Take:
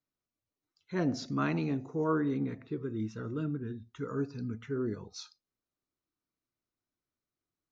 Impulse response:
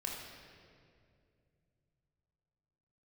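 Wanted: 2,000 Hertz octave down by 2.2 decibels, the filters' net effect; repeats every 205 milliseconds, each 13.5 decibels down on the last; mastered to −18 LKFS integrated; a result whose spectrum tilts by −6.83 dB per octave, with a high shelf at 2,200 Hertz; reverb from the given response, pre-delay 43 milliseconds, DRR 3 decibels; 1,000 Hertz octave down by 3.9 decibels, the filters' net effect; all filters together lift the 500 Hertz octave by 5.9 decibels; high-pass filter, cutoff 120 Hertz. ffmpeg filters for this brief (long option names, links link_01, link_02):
-filter_complex "[0:a]highpass=120,equalizer=frequency=500:width_type=o:gain=8.5,equalizer=frequency=1000:width_type=o:gain=-7.5,equalizer=frequency=2000:width_type=o:gain=-3.5,highshelf=frequency=2200:gain=5.5,aecho=1:1:205|410:0.211|0.0444,asplit=2[link_01][link_02];[1:a]atrim=start_sample=2205,adelay=43[link_03];[link_02][link_03]afir=irnorm=-1:irlink=0,volume=-4dB[link_04];[link_01][link_04]amix=inputs=2:normalize=0,volume=12dB"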